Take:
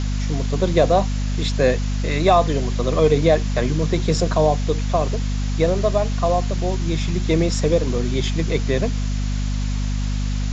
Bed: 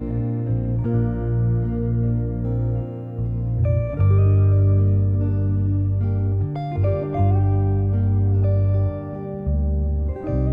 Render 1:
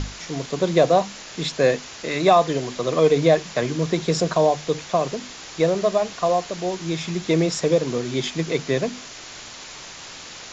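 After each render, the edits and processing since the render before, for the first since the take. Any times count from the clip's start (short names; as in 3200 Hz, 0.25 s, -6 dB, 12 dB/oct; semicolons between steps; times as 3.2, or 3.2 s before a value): notches 50/100/150/200/250 Hz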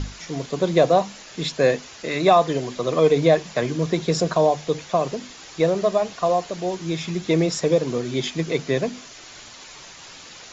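denoiser 6 dB, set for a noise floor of -39 dBFS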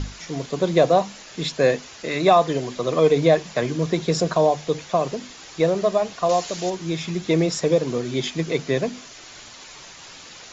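6.29–6.7 high shelf 2800 Hz +11 dB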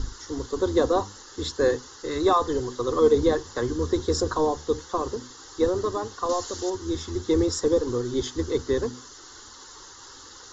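octaver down 1 oct, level -4 dB; fixed phaser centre 650 Hz, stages 6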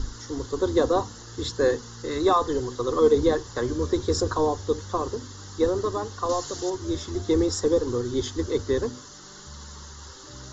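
add bed -23.5 dB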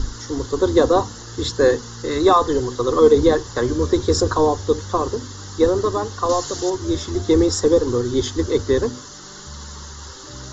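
gain +6.5 dB; limiter -3 dBFS, peak gain reduction 1 dB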